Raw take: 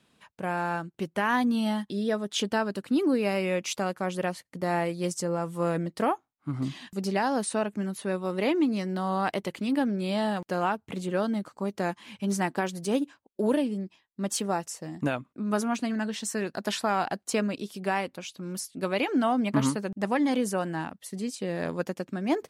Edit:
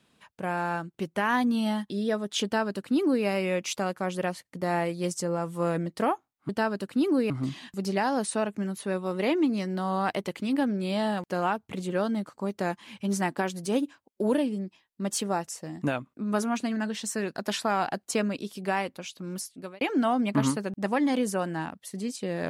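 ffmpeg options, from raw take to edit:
-filter_complex "[0:a]asplit=4[a][b][c][d];[a]atrim=end=6.492[e];[b]atrim=start=2.438:end=3.252[f];[c]atrim=start=6.488:end=19,asetpts=PTS-STARTPTS,afade=t=out:st=12.062:d=0.45[g];[d]atrim=start=19,asetpts=PTS-STARTPTS,afade=t=in:d=0.004:c=hsin[h];[e][f]acrossfade=d=0.004:c1=hsin:c2=hsin[i];[g][h]concat=n=2:v=0:a=1[j];[i][j]acrossfade=d=0.004:c1=hsin:c2=hsin"

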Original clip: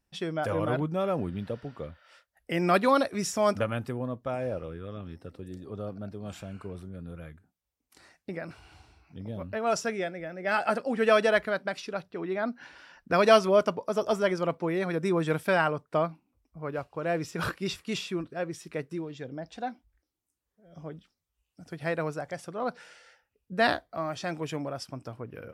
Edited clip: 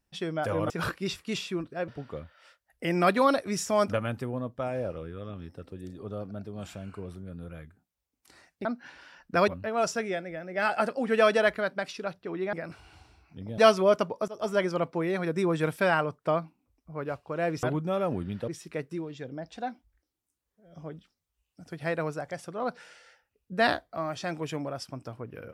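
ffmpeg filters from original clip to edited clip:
-filter_complex "[0:a]asplit=10[a][b][c][d][e][f][g][h][i][j];[a]atrim=end=0.702[k];[b]atrim=start=17.298:end=18.482[l];[c]atrim=start=1.548:end=8.322[m];[d]atrim=start=12.418:end=13.252[n];[e]atrim=start=9.368:end=12.422[o];[f]atrim=start=8.318:end=9.372[p];[g]atrim=start=13.248:end=13.95,asetpts=PTS-STARTPTS,afade=t=out:st=0.698:d=0.004:c=hsin:silence=0.0749894[q];[h]atrim=start=13.95:end=17.302,asetpts=PTS-STARTPTS,afade=t=in:d=0.28:silence=0.0749894[r];[i]atrim=start=0.698:end=1.552[s];[j]atrim=start=18.478[t];[k][l]acrossfade=d=0.004:c1=hsin:c2=hsin[u];[u][m]acrossfade=d=0.004:c1=hsin:c2=hsin[v];[v][n]acrossfade=d=0.004:c1=hsin:c2=hsin[w];[w][o]acrossfade=d=0.004:c1=hsin:c2=hsin[x];[x][p]acrossfade=d=0.004:c1=hsin:c2=hsin[y];[q][r]concat=n=2:v=0:a=1[z];[y][z]acrossfade=d=0.004:c1=hsin:c2=hsin[aa];[aa][s]acrossfade=d=0.004:c1=hsin:c2=hsin[ab];[ab][t]acrossfade=d=0.004:c1=hsin:c2=hsin"

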